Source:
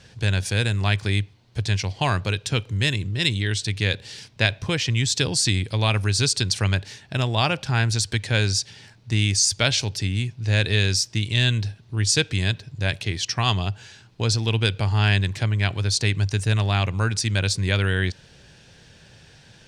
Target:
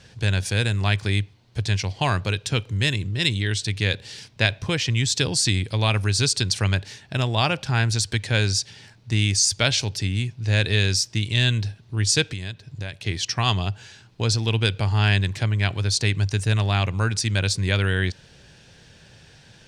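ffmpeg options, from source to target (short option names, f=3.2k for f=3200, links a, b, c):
-filter_complex "[0:a]asettb=1/sr,asplit=3[a][b][c];[a]atrim=end=12.324[d];[b]atrim=start=12.32:end=13.05,asetpts=PTS-STARTPTS,afade=t=in:d=0.004:c=qsin,afade=t=out:st=0.726:d=0.004:c=qsin,acompressor=threshold=-29dB:ratio=6[e];[c]atrim=start=13.046[f];[d][e]acrossfade=d=0.004:c1=hsin:c2=qsin[g];[g][f]acrossfade=d=0.004:c1=qsin:c2=hsin"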